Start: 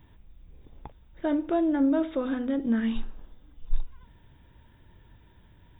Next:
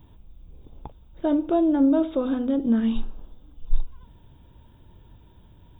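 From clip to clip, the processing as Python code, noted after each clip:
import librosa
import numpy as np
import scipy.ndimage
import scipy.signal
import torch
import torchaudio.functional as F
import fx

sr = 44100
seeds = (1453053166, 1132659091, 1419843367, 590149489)

y = fx.peak_eq(x, sr, hz=1900.0, db=-12.5, octaves=0.74)
y = F.gain(torch.from_numpy(y), 4.5).numpy()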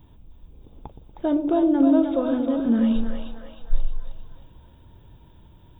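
y = fx.echo_split(x, sr, split_hz=530.0, low_ms=119, high_ms=311, feedback_pct=52, wet_db=-5.0)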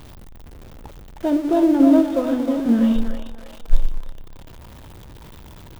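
y = x + 0.5 * 10.0 ** (-31.5 / 20.0) * np.sign(x)
y = fx.quant_float(y, sr, bits=6)
y = fx.upward_expand(y, sr, threshold_db=-32.0, expansion=1.5)
y = F.gain(torch.from_numpy(y), 6.0).numpy()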